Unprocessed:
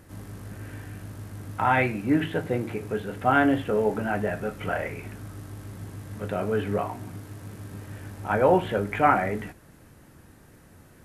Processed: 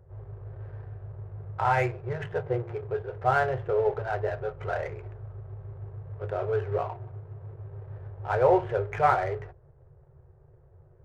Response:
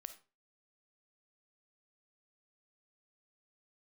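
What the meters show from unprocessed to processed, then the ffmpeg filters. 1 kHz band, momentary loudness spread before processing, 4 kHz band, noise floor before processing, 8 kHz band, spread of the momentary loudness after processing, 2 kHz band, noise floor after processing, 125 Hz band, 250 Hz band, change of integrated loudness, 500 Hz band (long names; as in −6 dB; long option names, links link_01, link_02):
−2.0 dB, 19 LU, can't be measured, −53 dBFS, below −10 dB, 18 LU, −5.0 dB, −57 dBFS, −1.0 dB, −12.5 dB, −2.5 dB, −1.0 dB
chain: -af "afftfilt=real='re*(1-between(b*sr/4096,160,350))':imag='im*(1-between(b*sr/4096,160,350))':win_size=4096:overlap=0.75,adynamicsmooth=sensitivity=6.5:basefreq=570,lowpass=frequency=1200:poles=1"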